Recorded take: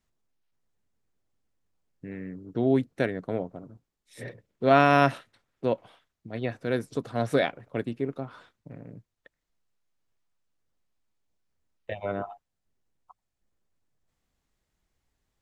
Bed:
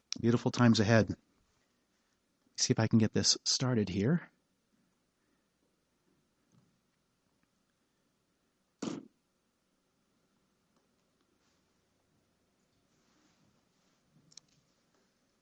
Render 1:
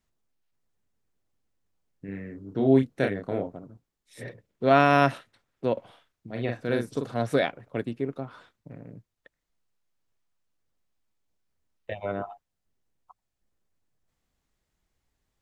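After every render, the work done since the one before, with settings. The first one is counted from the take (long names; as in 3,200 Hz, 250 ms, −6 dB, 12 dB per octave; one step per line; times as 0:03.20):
0:02.05–0:03.57: double-tracking delay 30 ms −4 dB
0:05.73–0:07.14: double-tracking delay 42 ms −4.5 dB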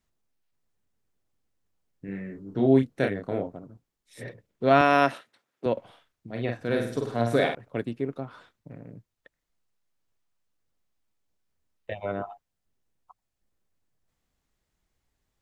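0:02.05–0:02.66: double-tracking delay 16 ms −6 dB
0:04.81–0:05.66: high-pass filter 230 Hz
0:06.56–0:07.55: flutter between parallel walls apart 8.8 metres, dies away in 0.55 s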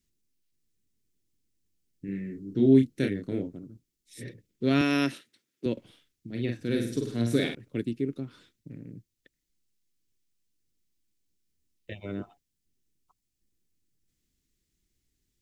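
drawn EQ curve 120 Hz 0 dB, 340 Hz +3 dB, 700 Hz −18 dB, 1,100 Hz −15 dB, 2,100 Hz −3 dB, 5,700 Hz +4 dB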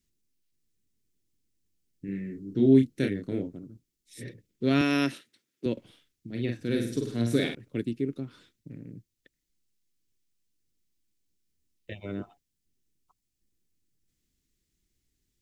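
no processing that can be heard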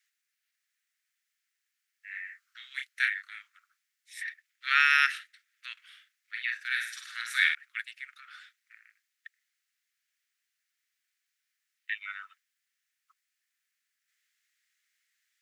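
Butterworth high-pass 1,200 Hz 72 dB per octave
parametric band 1,800 Hz +15 dB 1.2 octaves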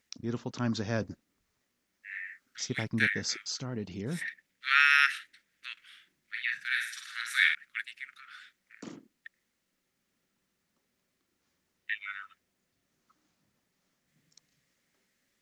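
mix in bed −6 dB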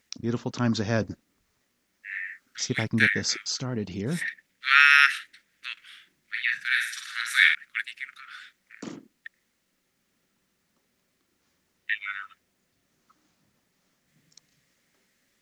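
level +6 dB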